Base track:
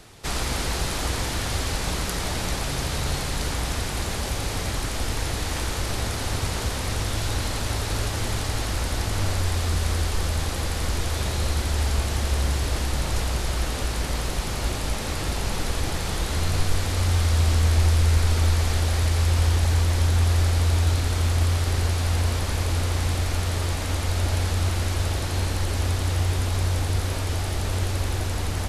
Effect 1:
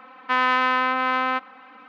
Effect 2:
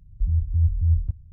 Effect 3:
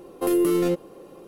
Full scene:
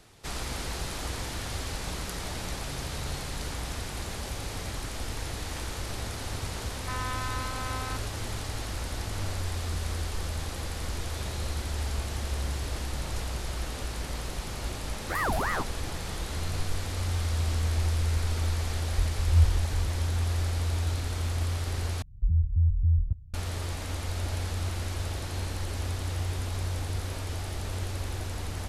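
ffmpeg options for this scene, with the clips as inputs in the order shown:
ffmpeg -i bed.wav -i cue0.wav -i cue1.wav -i cue2.wav -filter_complex "[2:a]asplit=2[link_01][link_02];[0:a]volume=-8dB[link_03];[1:a]asoftclip=type=tanh:threshold=-12dB[link_04];[3:a]aeval=exprs='val(0)*sin(2*PI*950*n/s+950*0.7/3.2*sin(2*PI*3.2*n/s))':channel_layout=same[link_05];[link_01]aphaser=in_gain=1:out_gain=1:delay=4.3:decay=0.66:speed=1.6:type=triangular[link_06];[link_02]alimiter=limit=-16dB:level=0:latency=1:release=17[link_07];[link_03]asplit=2[link_08][link_09];[link_08]atrim=end=22.024[link_10];[link_07]atrim=end=1.32,asetpts=PTS-STARTPTS,volume=-1.5dB[link_11];[link_09]atrim=start=23.336[link_12];[link_04]atrim=end=1.88,asetpts=PTS-STARTPTS,volume=-13.5dB,afade=type=in:duration=0.004:curve=hsin,afade=type=out:start_time=1.876:duration=0.004:curve=hsin,adelay=290178S[link_13];[link_05]atrim=end=1.27,asetpts=PTS-STARTPTS,volume=-6dB,afade=type=in:duration=0.004:curve=hsin,afade=type=out:start_time=1.266:duration=0.004:curve=hsin,adelay=14880[link_14];[link_06]atrim=end=1.32,asetpts=PTS-STARTPTS,volume=-7dB,afade=type=in:duration=0.004:curve=hsin,afade=type=out:start_time=1.316:duration=0.004:curve=hsin,adelay=18770[link_15];[link_10][link_11]acrossfade=duration=0.004:curve1=hsin:curve2=hsin[link_16];[link_16][link_12]acrossfade=duration=0.004:curve1=hsin:curve2=hsin[link_17];[link_17][link_13][link_14][link_15]amix=inputs=4:normalize=0" out.wav

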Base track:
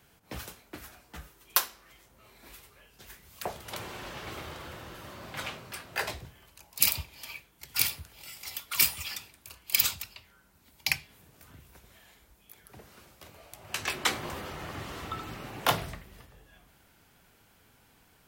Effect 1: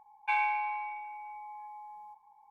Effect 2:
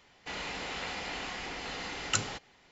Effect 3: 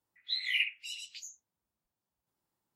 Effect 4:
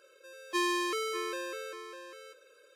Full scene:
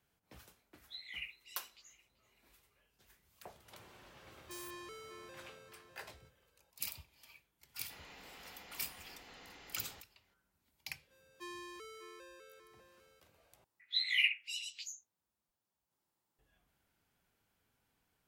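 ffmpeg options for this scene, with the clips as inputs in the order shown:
ffmpeg -i bed.wav -i cue0.wav -i cue1.wav -i cue2.wav -i cue3.wav -filter_complex "[3:a]asplit=2[link_01][link_02];[4:a]asplit=2[link_03][link_04];[0:a]volume=-17.5dB[link_05];[link_01]asplit=2[link_06][link_07];[link_07]adelay=385,lowpass=frequency=3900:poles=1,volume=-17.5dB,asplit=2[link_08][link_09];[link_09]adelay=385,lowpass=frequency=3900:poles=1,volume=0.49,asplit=2[link_10][link_11];[link_11]adelay=385,lowpass=frequency=3900:poles=1,volume=0.49,asplit=2[link_12][link_13];[link_13]adelay=385,lowpass=frequency=3900:poles=1,volume=0.49[link_14];[link_06][link_08][link_10][link_12][link_14]amix=inputs=5:normalize=0[link_15];[link_03]aeval=exprs='(mod(10*val(0)+1,2)-1)/10':channel_layout=same[link_16];[link_02]lowshelf=frequency=380:gain=-4.5[link_17];[link_05]asplit=2[link_18][link_19];[link_18]atrim=end=13.644[link_20];[link_17]atrim=end=2.75[link_21];[link_19]atrim=start=16.386[link_22];[link_15]atrim=end=2.75,asetpts=PTS-STARTPTS,volume=-15dB,afade=type=in:duration=0.004:curve=hsin,afade=type=out:start_time=2.746:duration=0.004:curve=hsin,adelay=620[link_23];[link_16]atrim=end=2.75,asetpts=PTS-STARTPTS,volume=-17.5dB,afade=type=in:duration=0.004:curve=hsin,afade=type=out:start_time=2.746:duration=0.004:curve=hsin,adelay=3960[link_24];[2:a]atrim=end=2.71,asetpts=PTS-STARTPTS,volume=-17dB,afade=type=in:duration=0.004:curve=hsin,afade=type=out:start_time=2.706:duration=0.004:curve=hsin,adelay=7630[link_25];[link_04]atrim=end=2.75,asetpts=PTS-STARTPTS,volume=-18dB,afade=type=in:duration=0.004:curve=hsin,afade=type=out:start_time=2.746:duration=0.004:curve=hsin,adelay=10870[link_26];[link_20][link_21]acrossfade=duration=0.004:curve1=hsin:curve2=hsin[link_27];[link_27][link_22]acrossfade=duration=0.004:curve1=hsin:curve2=hsin[link_28];[link_28][link_23][link_24][link_25][link_26]amix=inputs=5:normalize=0" out.wav

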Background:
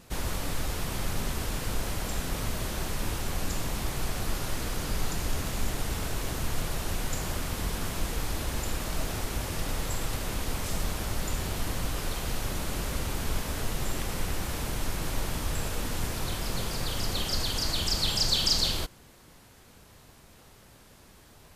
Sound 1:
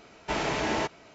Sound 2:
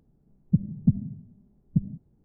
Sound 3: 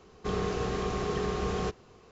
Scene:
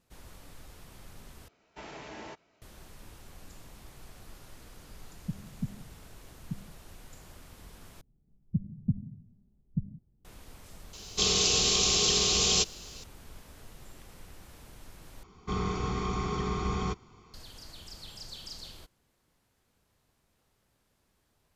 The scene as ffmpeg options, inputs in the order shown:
ffmpeg -i bed.wav -i cue0.wav -i cue1.wav -i cue2.wav -filter_complex "[2:a]asplit=2[link_01][link_02];[3:a]asplit=2[link_03][link_04];[0:a]volume=-19dB[link_05];[link_02]lowshelf=frequency=130:gain=11.5[link_06];[link_03]aexciter=amount=14:drive=5.9:freq=2700[link_07];[link_04]aecho=1:1:0.9:0.77[link_08];[link_05]asplit=4[link_09][link_10][link_11][link_12];[link_09]atrim=end=1.484[link_13];[1:a]atrim=end=1.14,asetpts=PTS-STARTPTS,volume=-16dB[link_14];[link_10]atrim=start=2.616:end=8.014[link_15];[link_06]atrim=end=2.24,asetpts=PTS-STARTPTS,volume=-12.5dB[link_16];[link_11]atrim=start=10.246:end=15.234[link_17];[link_08]atrim=end=2.11,asetpts=PTS-STARTPTS,volume=-2.5dB[link_18];[link_12]atrim=start=17.336[link_19];[link_01]atrim=end=2.24,asetpts=PTS-STARTPTS,volume=-14dB,afade=type=in:duration=0.004:curve=hsin,afade=type=out:start_time=2.236:duration=0.004:curve=hsin,adelay=4750[link_20];[link_07]atrim=end=2.11,asetpts=PTS-STARTPTS,volume=-2.5dB,afade=type=in:duration=0.004:curve=hsin,afade=type=out:start_time=2.106:duration=0.004:curve=hsin,adelay=10930[link_21];[link_13][link_14]acrossfade=duration=0.004:curve1=hsin:curve2=hsin[link_22];[link_22][link_15]acrossfade=duration=0.004:curve1=hsin:curve2=hsin[link_23];[link_23][link_16]acrossfade=duration=0.004:curve1=hsin:curve2=hsin[link_24];[link_24][link_17]acrossfade=duration=0.004:curve1=hsin:curve2=hsin[link_25];[link_25][link_18]acrossfade=duration=0.004:curve1=hsin:curve2=hsin[link_26];[link_26][link_19]acrossfade=duration=0.004:curve1=hsin:curve2=hsin[link_27];[link_27][link_20][link_21]amix=inputs=3:normalize=0" out.wav

